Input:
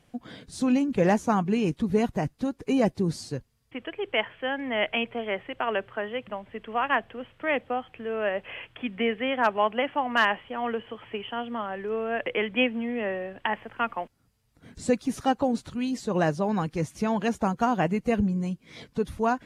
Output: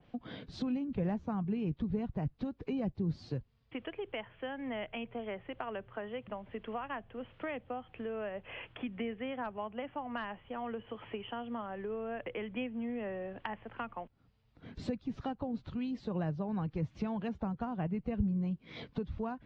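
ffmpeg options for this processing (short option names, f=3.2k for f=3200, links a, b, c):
-filter_complex "[0:a]lowpass=f=4k:w=0.5412,lowpass=f=4k:w=1.3066,equalizer=f=1.8k:t=o:w=0.77:g=-3,acrossover=split=150[a][b];[b]acompressor=threshold=-38dB:ratio=5[c];[a][c]amix=inputs=2:normalize=0,adynamicequalizer=threshold=0.00178:dfrequency=2300:dqfactor=0.7:tfrequency=2300:tqfactor=0.7:attack=5:release=100:ratio=0.375:range=2.5:mode=cutabove:tftype=highshelf"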